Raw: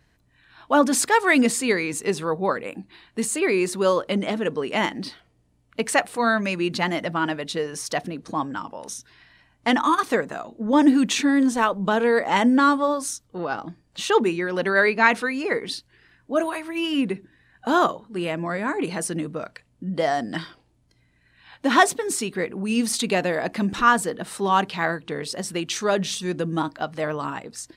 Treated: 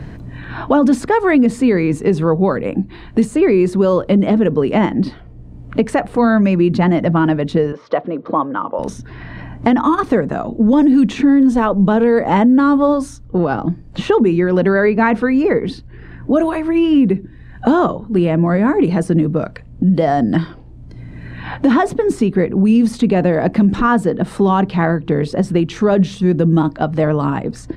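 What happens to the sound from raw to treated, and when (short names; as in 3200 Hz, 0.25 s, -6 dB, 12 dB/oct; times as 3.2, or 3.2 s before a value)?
7.72–8.79 speaker cabinet 470–3100 Hz, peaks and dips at 530 Hz +5 dB, 780 Hz -4 dB, 1200 Hz +5 dB, 1700 Hz -6 dB, 2600 Hz -7 dB
whole clip: tilt -4.5 dB/oct; limiter -9 dBFS; three-band squash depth 70%; gain +4.5 dB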